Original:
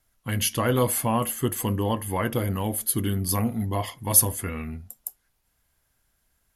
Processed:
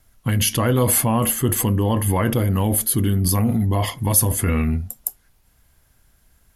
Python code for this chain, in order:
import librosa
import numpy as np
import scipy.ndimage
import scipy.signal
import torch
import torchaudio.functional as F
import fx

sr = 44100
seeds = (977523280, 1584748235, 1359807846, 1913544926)

p1 = fx.low_shelf(x, sr, hz=290.0, db=6.5)
p2 = fx.over_compress(p1, sr, threshold_db=-26.0, ratio=-0.5)
y = p1 + (p2 * 10.0 ** (0.0 / 20.0))